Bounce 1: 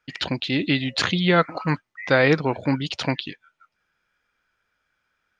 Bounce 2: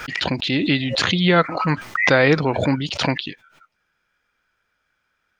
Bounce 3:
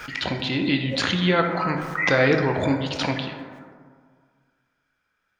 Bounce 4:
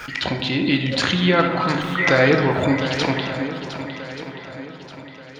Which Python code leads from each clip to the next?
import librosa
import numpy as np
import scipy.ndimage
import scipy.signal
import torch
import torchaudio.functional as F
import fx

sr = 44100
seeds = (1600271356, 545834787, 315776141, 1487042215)

y1 = fx.pre_swell(x, sr, db_per_s=57.0)
y1 = y1 * librosa.db_to_amplitude(2.0)
y2 = fx.rev_plate(y1, sr, seeds[0], rt60_s=1.9, hf_ratio=0.35, predelay_ms=0, drr_db=3.5)
y2 = y2 * librosa.db_to_amplitude(-5.0)
y3 = fx.echo_swing(y2, sr, ms=1181, ratio=1.5, feedback_pct=39, wet_db=-11)
y3 = y3 * librosa.db_to_amplitude(3.0)